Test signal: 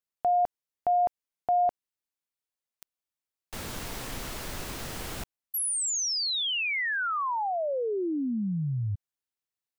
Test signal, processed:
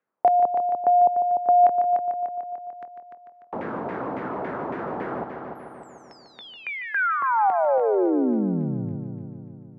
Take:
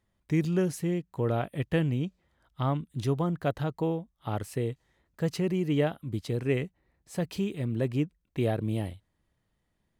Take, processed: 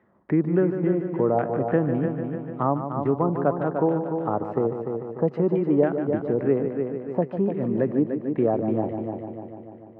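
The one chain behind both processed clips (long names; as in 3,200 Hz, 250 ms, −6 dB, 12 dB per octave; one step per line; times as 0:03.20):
auto-filter low-pass saw down 3.6 Hz 790–2,000 Hz
high-pass filter 250 Hz 12 dB per octave
tilt shelving filter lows +9.5 dB, about 1,200 Hz
echo machine with several playback heads 148 ms, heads first and second, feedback 48%, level −10 dB
multiband upward and downward compressor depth 40%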